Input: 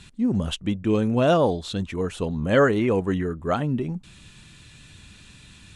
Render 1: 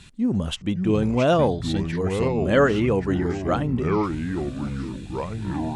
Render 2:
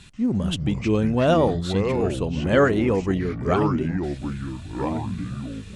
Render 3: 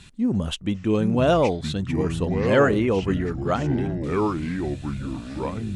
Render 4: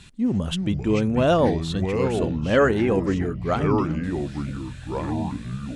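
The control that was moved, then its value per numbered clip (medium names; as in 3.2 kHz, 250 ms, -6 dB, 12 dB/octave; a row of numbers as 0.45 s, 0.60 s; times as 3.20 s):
ever faster or slower copies, time: 493 ms, 135 ms, 743 ms, 260 ms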